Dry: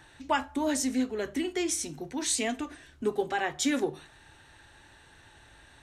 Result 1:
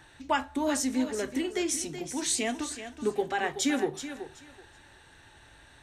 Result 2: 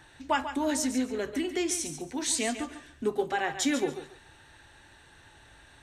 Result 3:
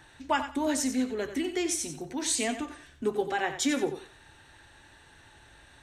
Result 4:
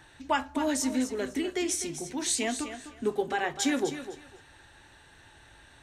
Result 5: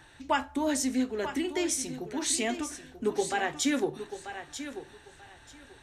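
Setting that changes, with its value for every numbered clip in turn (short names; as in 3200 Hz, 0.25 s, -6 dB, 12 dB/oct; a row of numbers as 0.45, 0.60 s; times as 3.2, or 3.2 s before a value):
thinning echo, time: 377, 141, 91, 253, 938 ms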